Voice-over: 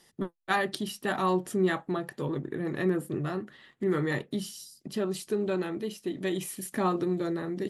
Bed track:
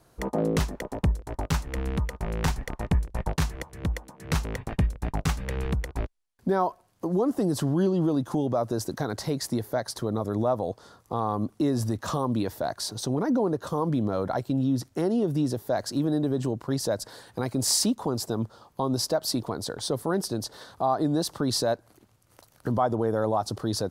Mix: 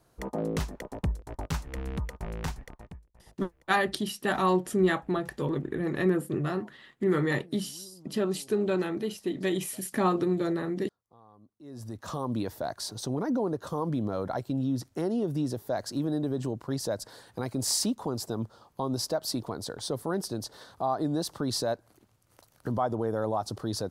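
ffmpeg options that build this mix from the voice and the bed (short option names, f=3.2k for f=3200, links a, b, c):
-filter_complex "[0:a]adelay=3200,volume=2dB[a];[1:a]volume=19.5dB,afade=t=out:st=2.27:d=0.73:silence=0.0668344,afade=t=in:st=11.61:d=0.74:silence=0.0562341[b];[a][b]amix=inputs=2:normalize=0"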